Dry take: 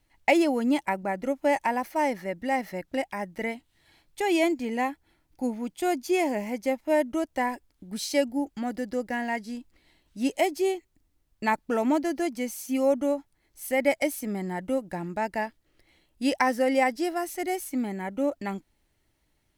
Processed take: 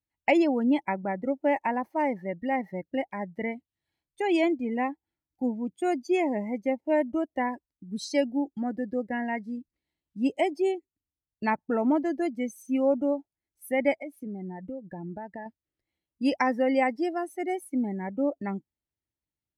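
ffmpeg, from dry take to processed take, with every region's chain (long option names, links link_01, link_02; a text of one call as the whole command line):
ffmpeg -i in.wav -filter_complex "[0:a]asettb=1/sr,asplit=3[link_01][link_02][link_03];[link_01]atrim=end=14.014[link_04];[link_02]atrim=start=14.01:end=15.46,asetpts=PTS-STARTPTS,afade=type=in:duration=0.004:curve=qsin,afade=type=out:start_time=1.446:duration=0.004:curve=qsin,bass=frequency=250:gain=-1,treble=frequency=4000:gain=-6,acompressor=threshold=-34dB:ratio=4:attack=3.2:release=140:knee=1:detection=peak[link_05];[link_03]atrim=start=15.456[link_06];[link_04][link_05]acrossfade=duration=0.004:curve1=hsin:curve2=qsin[link_07];[link_07][link_06]acrossfade=duration=0.004:curve1=qsin:curve2=hsin,afftdn=noise_reduction=22:noise_floor=-36,highpass=62,lowshelf=frequency=300:gain=6,volume=-2.5dB" out.wav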